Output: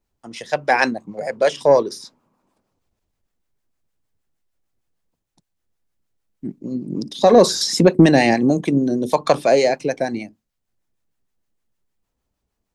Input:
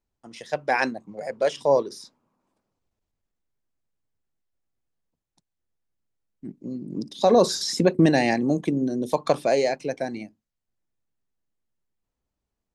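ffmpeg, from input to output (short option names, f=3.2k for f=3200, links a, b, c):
-filter_complex "[0:a]acrossover=split=670[a][b];[a]aeval=exprs='val(0)*(1-0.5/2+0.5/2*cos(2*PI*6.5*n/s))':c=same[c];[b]aeval=exprs='val(0)*(1-0.5/2-0.5/2*cos(2*PI*6.5*n/s))':c=same[d];[c][d]amix=inputs=2:normalize=0,acontrast=70,volume=2.5dB"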